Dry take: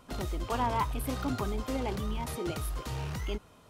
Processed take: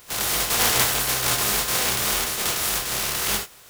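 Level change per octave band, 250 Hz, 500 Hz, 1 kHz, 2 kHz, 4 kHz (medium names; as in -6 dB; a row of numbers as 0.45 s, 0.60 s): -1.0 dB, +4.5 dB, +5.5 dB, +18.0 dB, +21.0 dB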